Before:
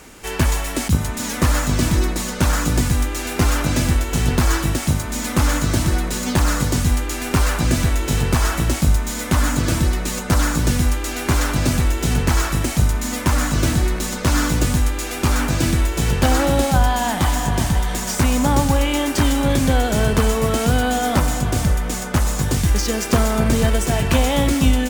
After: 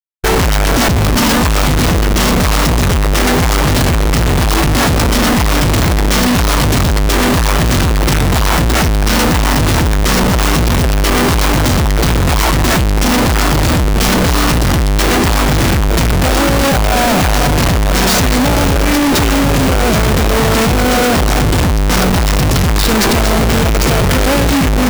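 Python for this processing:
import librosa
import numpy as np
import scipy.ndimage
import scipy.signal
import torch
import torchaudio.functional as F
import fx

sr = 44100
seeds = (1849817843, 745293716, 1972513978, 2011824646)

y = fx.schmitt(x, sr, flips_db=-28.0)
y = fx.formant_shift(y, sr, semitones=-4)
y = y * 10.0 ** (7.0 / 20.0)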